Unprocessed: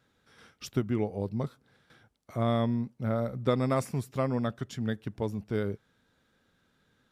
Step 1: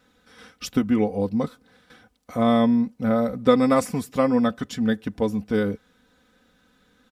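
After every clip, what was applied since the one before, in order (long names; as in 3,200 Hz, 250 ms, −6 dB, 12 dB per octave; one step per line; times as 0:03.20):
comb filter 4 ms, depth 72%
level +7 dB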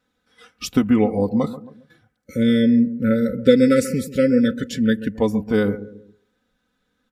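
time-frequency box erased 0:02.26–0:05.15, 580–1,300 Hz
bucket-brigade delay 135 ms, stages 2,048, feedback 41%, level −14 dB
noise reduction from a noise print of the clip's start 14 dB
level +4 dB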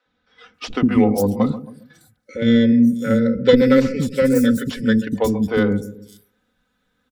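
stylus tracing distortion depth 0.092 ms
three-band delay without the direct sound mids, lows, highs 60/540 ms, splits 340/5,600 Hz
level +3 dB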